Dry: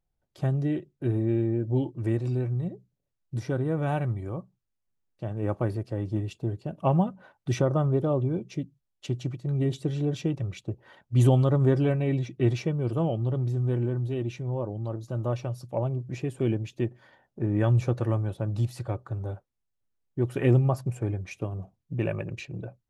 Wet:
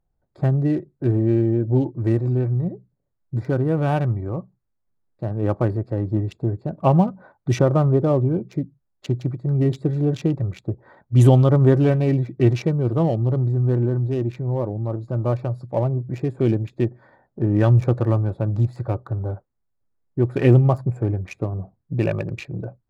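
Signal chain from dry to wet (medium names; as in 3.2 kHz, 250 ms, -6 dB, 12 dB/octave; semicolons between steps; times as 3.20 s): local Wiener filter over 15 samples; trim +7 dB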